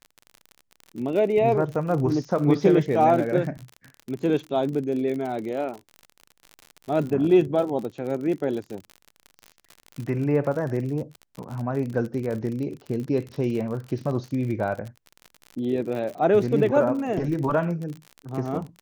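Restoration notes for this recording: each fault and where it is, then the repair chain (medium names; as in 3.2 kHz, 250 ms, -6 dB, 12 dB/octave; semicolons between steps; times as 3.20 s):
crackle 51 per s -31 dBFS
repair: de-click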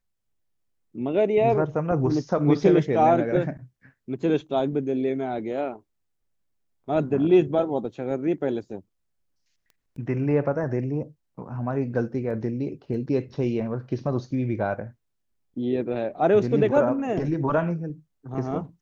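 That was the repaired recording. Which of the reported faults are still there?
nothing left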